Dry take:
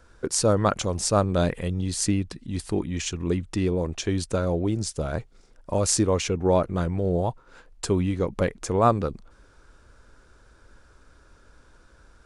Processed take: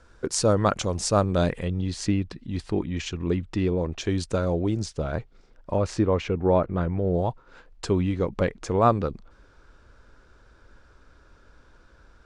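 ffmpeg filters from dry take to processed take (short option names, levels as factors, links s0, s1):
-af "asetnsamples=n=441:p=0,asendcmd='1.64 lowpass f 4300;4.01 lowpass f 7200;4.86 lowpass f 4300;5.76 lowpass f 2500;7.14 lowpass f 5300',lowpass=8000"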